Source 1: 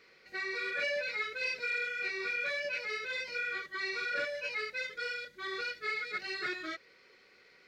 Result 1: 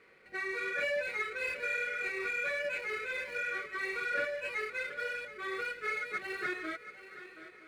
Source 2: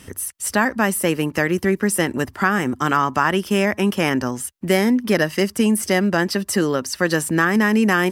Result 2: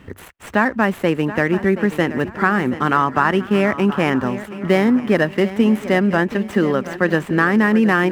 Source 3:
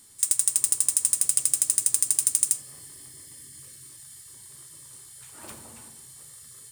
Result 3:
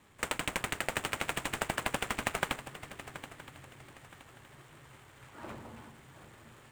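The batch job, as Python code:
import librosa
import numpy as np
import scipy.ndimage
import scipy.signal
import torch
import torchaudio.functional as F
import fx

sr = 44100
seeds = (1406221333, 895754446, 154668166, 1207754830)

y = scipy.ndimage.median_filter(x, 9, mode='constant')
y = fx.bass_treble(y, sr, bass_db=0, treble_db=-10)
y = fx.echo_swing(y, sr, ms=970, ratio=3, feedback_pct=31, wet_db=-14.0)
y = F.gain(torch.from_numpy(y), 2.0).numpy()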